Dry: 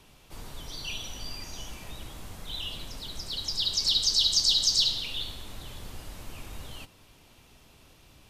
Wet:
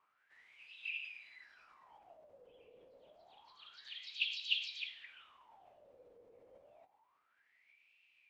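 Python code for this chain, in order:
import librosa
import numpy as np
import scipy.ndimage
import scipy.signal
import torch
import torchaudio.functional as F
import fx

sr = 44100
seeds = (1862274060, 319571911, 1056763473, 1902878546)

y = fx.wah_lfo(x, sr, hz=0.28, low_hz=560.0, high_hz=3100.0, q=17.0)
y = fx.formant_shift(y, sr, semitones=-3)
y = y * 10.0 ** (2.5 / 20.0)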